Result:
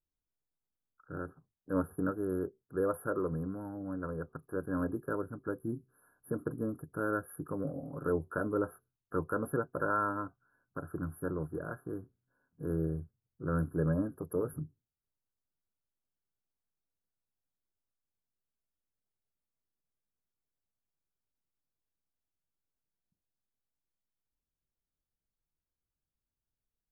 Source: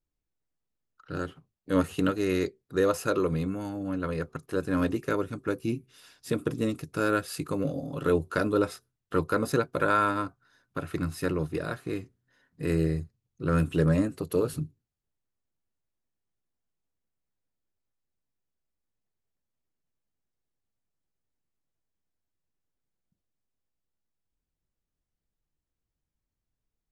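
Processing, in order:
linear-phase brick-wall band-stop 1,700–10,000 Hz
level −7 dB

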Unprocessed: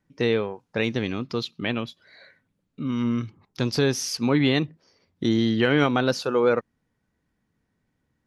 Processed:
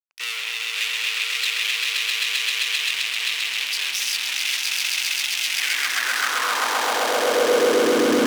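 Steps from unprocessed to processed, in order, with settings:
echo that builds up and dies away 131 ms, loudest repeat 8, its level −3.5 dB
fuzz pedal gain 38 dB, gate −43 dBFS
high-pass filter sweep 2,600 Hz → 280 Hz, 0:05.46–0:08.19
level −7 dB

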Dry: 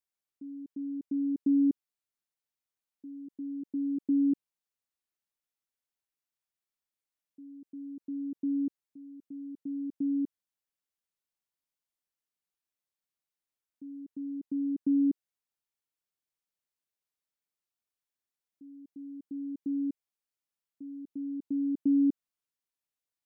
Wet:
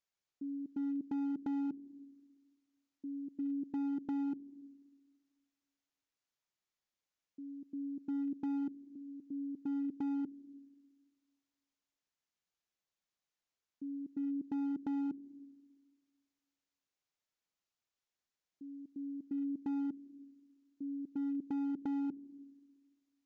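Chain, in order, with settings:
downward compressor 10 to 1, threshold −33 dBFS, peak gain reduction 11 dB
comb and all-pass reverb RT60 1.6 s, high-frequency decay 0.95×, pre-delay 105 ms, DRR 15.5 dB
gain into a clipping stage and back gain 34.5 dB
downsampling to 16,000 Hz
level +1.5 dB

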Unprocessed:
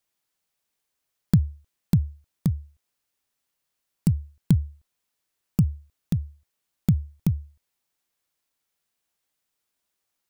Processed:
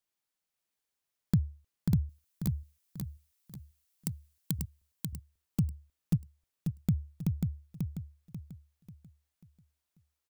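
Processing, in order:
0:02.09–0:04.59: spectral tilt +3 dB per octave
repeating echo 540 ms, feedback 38%, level −4 dB
level −8 dB

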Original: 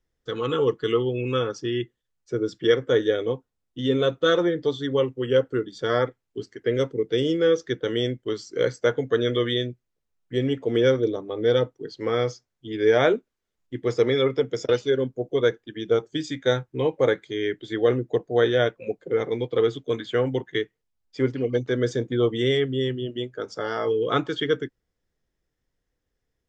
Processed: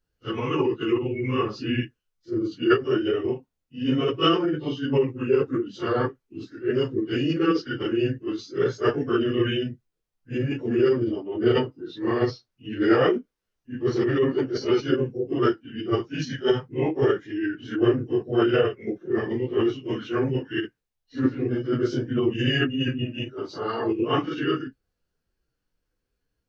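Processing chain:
random phases in long frames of 100 ms
formants moved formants −3 semitones

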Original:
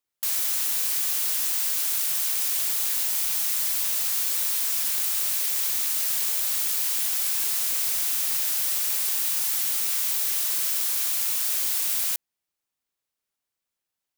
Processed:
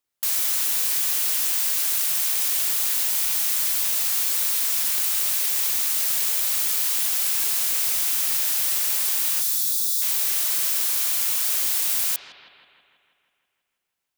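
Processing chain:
0:09.41–0:10.02: linear-phase brick-wall band-stop 320–3,300 Hz
bucket-brigade delay 162 ms, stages 4,096, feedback 63%, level −9 dB
level +2.5 dB

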